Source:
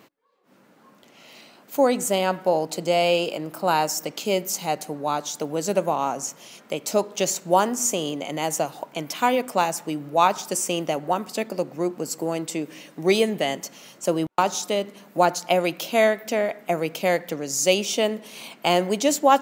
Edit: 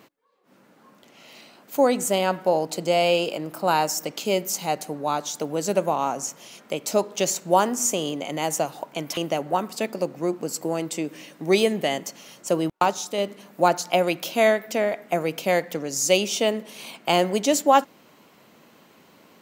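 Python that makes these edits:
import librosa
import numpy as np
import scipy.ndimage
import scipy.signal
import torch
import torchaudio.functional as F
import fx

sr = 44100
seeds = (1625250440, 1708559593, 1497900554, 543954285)

y = fx.edit(x, sr, fx.cut(start_s=9.17, length_s=1.57),
    fx.clip_gain(start_s=14.48, length_s=0.27, db=-3.5), tone=tone)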